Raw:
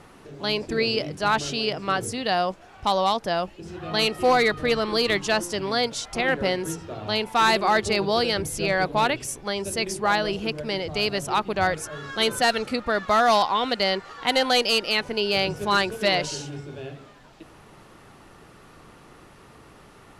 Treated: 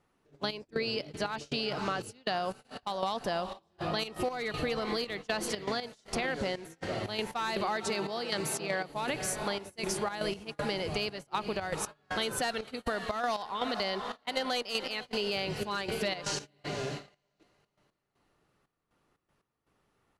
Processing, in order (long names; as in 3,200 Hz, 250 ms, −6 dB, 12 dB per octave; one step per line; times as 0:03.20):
0:07.76–0:08.89: high-pass filter 140 Hz 24 dB per octave
feedback delay with all-pass diffusion 499 ms, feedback 46%, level −14 dB
gate pattern "xxxx..xx.x.." 119 BPM −12 dB
brickwall limiter −15.5 dBFS, peak gain reduction 5 dB
noise gate −37 dBFS, range −24 dB
downward compressor 6 to 1, threshold −29 dBFS, peak gain reduction 10 dB